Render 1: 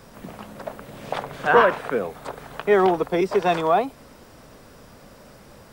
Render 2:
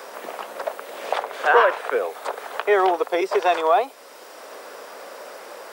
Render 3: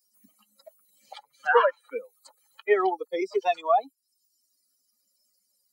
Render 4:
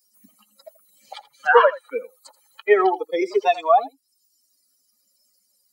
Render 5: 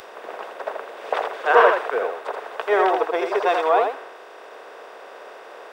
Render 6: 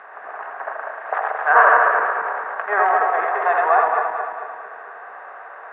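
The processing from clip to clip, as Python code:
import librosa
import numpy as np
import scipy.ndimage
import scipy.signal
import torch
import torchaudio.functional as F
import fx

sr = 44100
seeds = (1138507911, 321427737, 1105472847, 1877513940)

y1 = scipy.signal.sosfilt(scipy.signal.butter(4, 420.0, 'highpass', fs=sr, output='sos'), x)
y1 = fx.band_squash(y1, sr, depth_pct=40)
y1 = y1 * librosa.db_to_amplitude(3.0)
y2 = fx.bin_expand(y1, sr, power=3.0)
y2 = fx.high_shelf(y2, sr, hz=6300.0, db=-9.0)
y3 = y2 + 10.0 ** (-17.5 / 20.0) * np.pad(y2, (int(83 * sr / 1000.0), 0))[:len(y2)]
y3 = y3 * librosa.db_to_amplitude(6.0)
y4 = fx.bin_compress(y3, sr, power=0.2)
y4 = fx.band_widen(y4, sr, depth_pct=100)
y4 = y4 * librosa.db_to_amplitude(-9.5)
y5 = fx.reverse_delay_fb(y4, sr, ms=111, feedback_pct=72, wet_db=-3.0)
y5 = fx.cabinet(y5, sr, low_hz=350.0, low_slope=12, high_hz=2000.0, hz=(360.0, 510.0, 760.0, 1200.0, 1700.0), db=(-9, -8, 5, 6, 9))
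y5 = y5 * librosa.db_to_amplitude(-2.0)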